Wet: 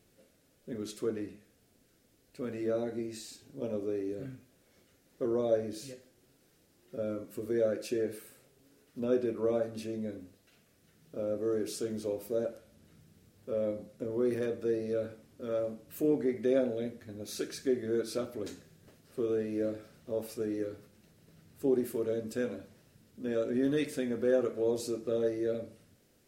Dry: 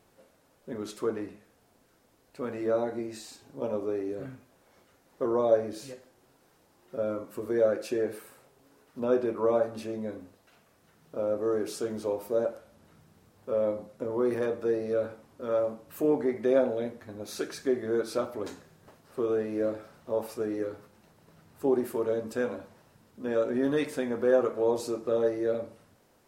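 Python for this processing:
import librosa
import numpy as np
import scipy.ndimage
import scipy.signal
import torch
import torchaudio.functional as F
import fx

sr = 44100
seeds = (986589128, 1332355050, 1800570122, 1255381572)

y = fx.peak_eq(x, sr, hz=950.0, db=-14.5, octaves=1.2)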